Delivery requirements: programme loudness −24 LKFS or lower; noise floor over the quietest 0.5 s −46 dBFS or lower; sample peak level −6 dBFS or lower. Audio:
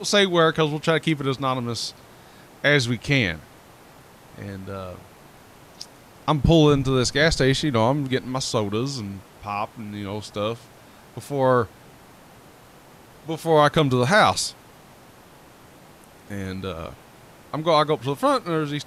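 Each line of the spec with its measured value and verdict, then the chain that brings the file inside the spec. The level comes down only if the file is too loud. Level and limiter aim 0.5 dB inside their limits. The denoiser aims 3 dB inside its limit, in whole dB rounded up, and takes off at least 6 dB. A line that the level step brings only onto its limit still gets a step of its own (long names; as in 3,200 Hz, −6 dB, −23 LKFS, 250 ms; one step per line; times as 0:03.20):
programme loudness −22.0 LKFS: out of spec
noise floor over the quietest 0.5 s −49 dBFS: in spec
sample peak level −5.5 dBFS: out of spec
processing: level −2.5 dB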